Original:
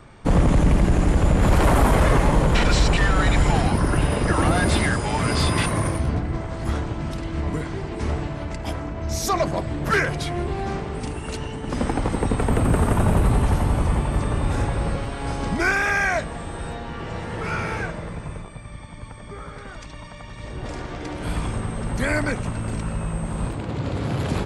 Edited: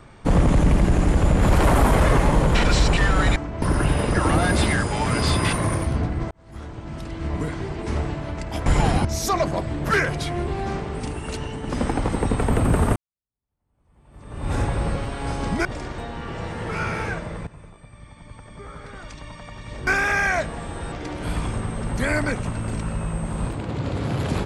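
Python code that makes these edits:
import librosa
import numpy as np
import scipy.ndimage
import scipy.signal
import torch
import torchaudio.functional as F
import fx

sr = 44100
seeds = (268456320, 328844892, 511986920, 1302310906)

y = fx.edit(x, sr, fx.swap(start_s=3.36, length_s=0.39, other_s=8.79, other_length_s=0.26),
    fx.fade_in_span(start_s=6.44, length_s=1.14),
    fx.fade_in_span(start_s=12.96, length_s=1.57, curve='exp'),
    fx.swap(start_s=15.65, length_s=1.05, other_s=20.59, other_length_s=0.33),
    fx.fade_in_from(start_s=18.19, length_s=1.77, floor_db=-12.5), tone=tone)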